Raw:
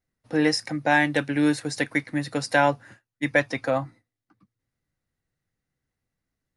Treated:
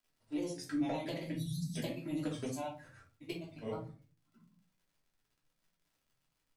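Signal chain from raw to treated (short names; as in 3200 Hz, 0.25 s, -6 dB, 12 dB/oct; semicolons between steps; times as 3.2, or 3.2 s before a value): pre-emphasis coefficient 0.8; spectral delete 1.32–1.77, 250–3100 Hz; high shelf 2700 Hz -9.5 dB; compressor 8:1, threshold -42 dBFS, peak gain reduction 14 dB; envelope flanger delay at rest 6.1 ms, full sweep at -44 dBFS; grains, pitch spread up and down by 3 st; crackle 100/s -70 dBFS; shoebox room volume 220 m³, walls furnished, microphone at 2.9 m; gain +4.5 dB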